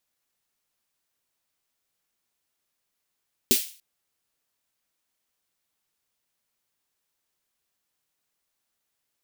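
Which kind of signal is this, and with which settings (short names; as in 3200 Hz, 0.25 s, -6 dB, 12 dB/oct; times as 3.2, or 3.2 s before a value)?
snare drum length 0.29 s, tones 250 Hz, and 380 Hz, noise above 2500 Hz, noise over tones 1.5 dB, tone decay 0.10 s, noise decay 0.40 s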